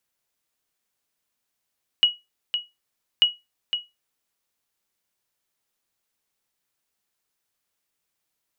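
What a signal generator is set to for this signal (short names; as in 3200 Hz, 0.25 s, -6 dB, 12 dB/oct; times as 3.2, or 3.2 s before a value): sonar ping 2910 Hz, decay 0.21 s, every 1.19 s, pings 2, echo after 0.51 s, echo -8.5 dB -8.5 dBFS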